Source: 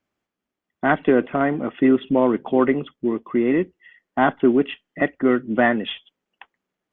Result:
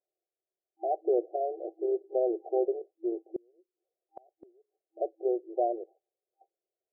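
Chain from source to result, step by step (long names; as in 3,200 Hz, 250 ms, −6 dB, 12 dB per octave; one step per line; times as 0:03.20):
brick-wall band-pass 330–790 Hz
0:03.36–0:04.85: gate with flip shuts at −23 dBFS, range −35 dB
level −7.5 dB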